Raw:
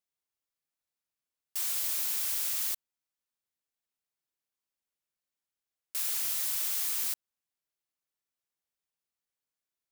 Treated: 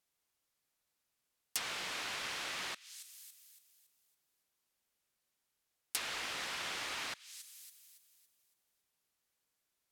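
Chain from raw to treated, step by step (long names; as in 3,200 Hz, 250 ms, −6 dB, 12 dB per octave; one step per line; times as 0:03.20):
delay with a high-pass on its return 280 ms, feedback 40%, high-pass 2,100 Hz, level −19 dB
treble cut that deepens with the level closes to 2,600 Hz, closed at −30.5 dBFS
level +7.5 dB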